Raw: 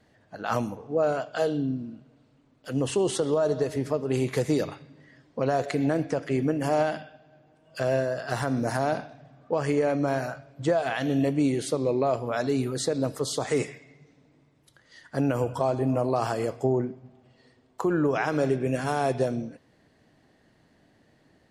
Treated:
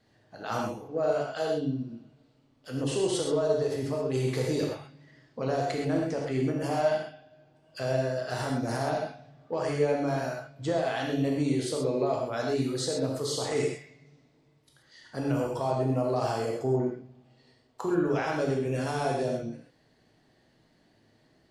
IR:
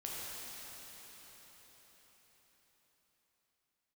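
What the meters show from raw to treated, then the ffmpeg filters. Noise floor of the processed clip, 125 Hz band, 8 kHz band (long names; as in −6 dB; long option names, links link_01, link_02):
−65 dBFS, −1.5 dB, −1.5 dB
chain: -filter_complex "[0:a]acontrast=74,equalizer=frequency=4500:width=1.7:gain=5.5[link_01];[1:a]atrim=start_sample=2205,atrim=end_sample=6174[link_02];[link_01][link_02]afir=irnorm=-1:irlink=0,volume=-7.5dB"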